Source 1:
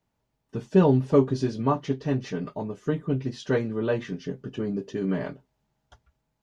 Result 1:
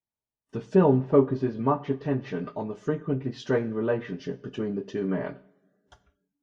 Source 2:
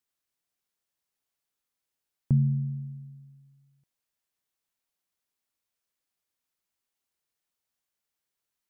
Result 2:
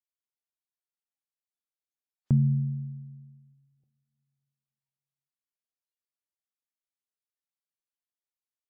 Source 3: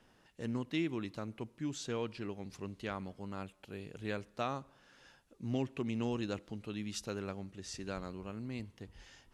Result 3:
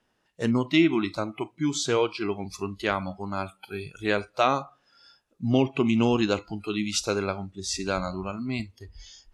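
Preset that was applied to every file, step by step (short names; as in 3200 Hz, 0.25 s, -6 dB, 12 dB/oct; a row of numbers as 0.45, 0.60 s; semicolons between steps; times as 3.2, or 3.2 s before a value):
treble ducked by the level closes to 1900 Hz, closed at -23.5 dBFS; low shelf 240 Hz -4.5 dB; two-slope reverb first 0.56 s, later 3.2 s, from -26 dB, DRR 13 dB; spectral noise reduction 20 dB; match loudness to -27 LUFS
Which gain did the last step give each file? +1.0, +4.0, +15.5 dB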